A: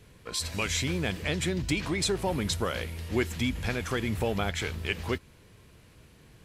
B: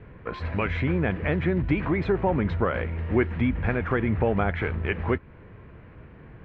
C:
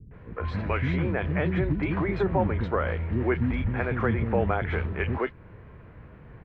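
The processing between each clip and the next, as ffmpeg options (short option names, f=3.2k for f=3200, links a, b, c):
-filter_complex "[0:a]lowpass=f=2k:w=0.5412,lowpass=f=2k:w=1.3066,asplit=2[a][b];[b]acompressor=threshold=-38dB:ratio=6,volume=-1.5dB[c];[a][c]amix=inputs=2:normalize=0,volume=4dB"
-filter_complex "[0:a]acrossover=split=290|2600[a][b][c];[b]adelay=110[d];[c]adelay=140[e];[a][d][e]amix=inputs=3:normalize=0"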